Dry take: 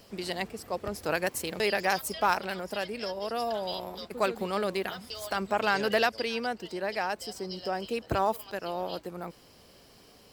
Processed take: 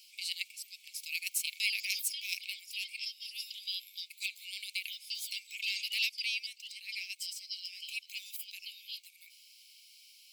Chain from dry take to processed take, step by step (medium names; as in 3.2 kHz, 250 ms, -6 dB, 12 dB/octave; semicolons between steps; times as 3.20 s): Chebyshev high-pass 2.2 kHz, order 8; trim +2.5 dB